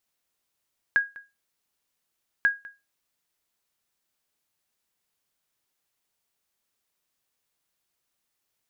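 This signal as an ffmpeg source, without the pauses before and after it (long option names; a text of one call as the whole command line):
ffmpeg -f lavfi -i "aevalsrc='0.224*(sin(2*PI*1640*mod(t,1.49))*exp(-6.91*mod(t,1.49)/0.24)+0.0841*sin(2*PI*1640*max(mod(t,1.49)-0.2,0))*exp(-6.91*max(mod(t,1.49)-0.2,0)/0.24))':duration=2.98:sample_rate=44100" out.wav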